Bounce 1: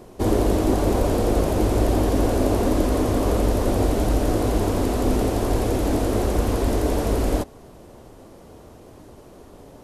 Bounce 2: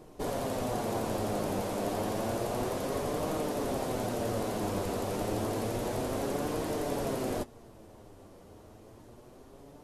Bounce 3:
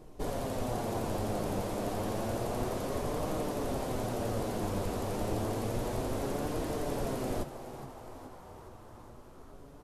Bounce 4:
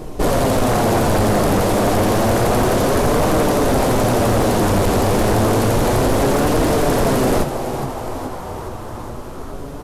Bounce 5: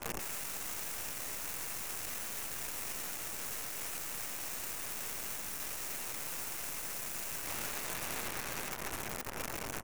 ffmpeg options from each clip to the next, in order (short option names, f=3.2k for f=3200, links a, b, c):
-af "afftfilt=real='re*lt(hypot(re,im),0.501)':imag='im*lt(hypot(re,im),0.501)':win_size=1024:overlap=0.75,flanger=delay=6.3:depth=4.2:regen=51:speed=0.3:shape=triangular,volume=-3.5dB"
-filter_complex "[0:a]lowshelf=f=79:g=11.5,asplit=2[a][b];[b]asplit=7[c][d][e][f][g][h][i];[c]adelay=418,afreqshift=120,volume=-13dB[j];[d]adelay=836,afreqshift=240,volume=-17.2dB[k];[e]adelay=1254,afreqshift=360,volume=-21.3dB[l];[f]adelay=1672,afreqshift=480,volume=-25.5dB[m];[g]adelay=2090,afreqshift=600,volume=-29.6dB[n];[h]adelay=2508,afreqshift=720,volume=-33.8dB[o];[i]adelay=2926,afreqshift=840,volume=-37.9dB[p];[j][k][l][m][n][o][p]amix=inputs=7:normalize=0[q];[a][q]amix=inputs=2:normalize=0,volume=-3dB"
-af "aeval=exprs='0.1*sin(PI/2*2.82*val(0)/0.1)':c=same,volume=8.5dB"
-af "aeval=exprs='(mod(16.8*val(0)+1,2)-1)/16.8':c=same,asuperstop=centerf=3900:order=12:qfactor=1.6,aeval=exprs='0.168*(cos(1*acos(clip(val(0)/0.168,-1,1)))-cos(1*PI/2))+0.0473*(cos(3*acos(clip(val(0)/0.168,-1,1)))-cos(3*PI/2))+0.00473*(cos(5*acos(clip(val(0)/0.168,-1,1)))-cos(5*PI/2))+0.00596*(cos(7*acos(clip(val(0)/0.168,-1,1)))-cos(7*PI/2))+0.00596*(cos(8*acos(clip(val(0)/0.168,-1,1)))-cos(8*PI/2))':c=same"